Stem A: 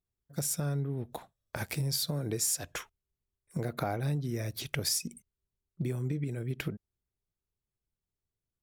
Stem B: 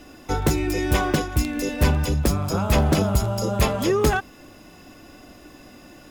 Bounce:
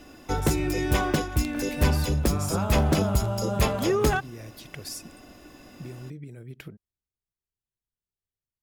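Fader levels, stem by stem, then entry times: −7.0, −3.0 decibels; 0.00, 0.00 seconds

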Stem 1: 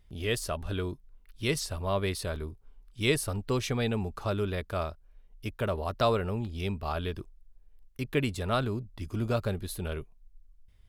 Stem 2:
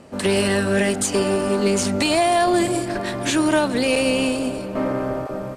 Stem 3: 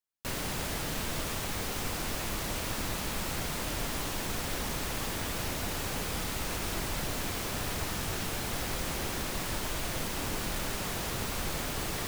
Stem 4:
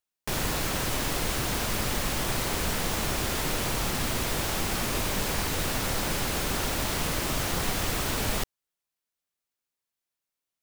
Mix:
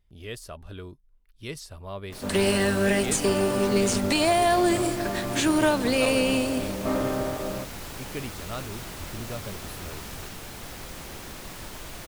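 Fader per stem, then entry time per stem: −7.5, −3.5, −5.5, −15.5 decibels; 0.00, 2.10, 2.10, 1.85 seconds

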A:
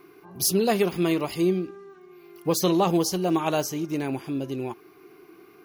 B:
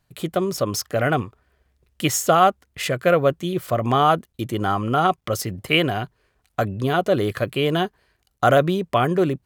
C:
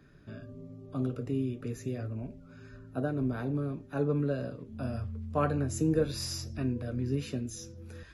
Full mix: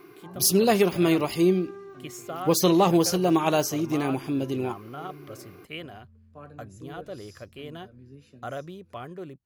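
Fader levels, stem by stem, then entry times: +2.0, −19.5, −17.0 decibels; 0.00, 0.00, 1.00 seconds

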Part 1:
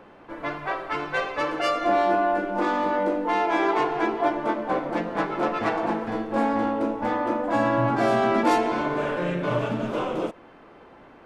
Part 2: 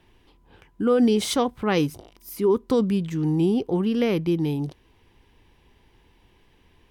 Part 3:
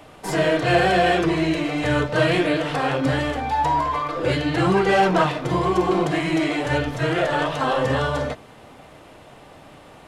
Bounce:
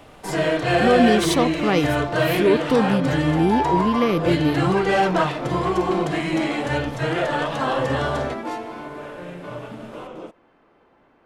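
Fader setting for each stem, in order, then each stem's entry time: −9.0, +2.0, −1.5 decibels; 0.00, 0.00, 0.00 seconds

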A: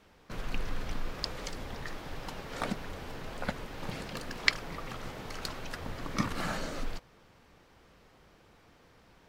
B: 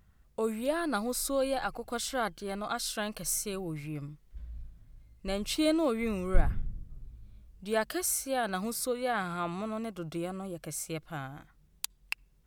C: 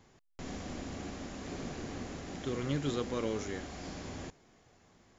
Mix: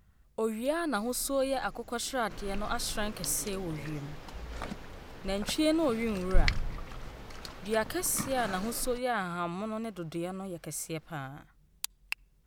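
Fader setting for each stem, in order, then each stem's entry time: −5.5, 0.0, −15.5 decibels; 2.00, 0.00, 0.55 seconds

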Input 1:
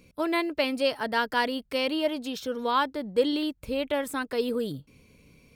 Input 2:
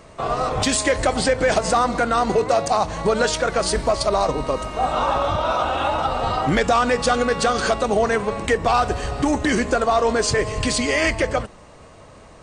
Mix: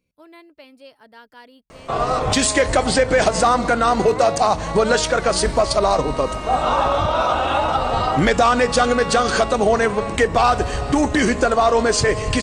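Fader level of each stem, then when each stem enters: −18.5, +2.5 decibels; 0.00, 1.70 seconds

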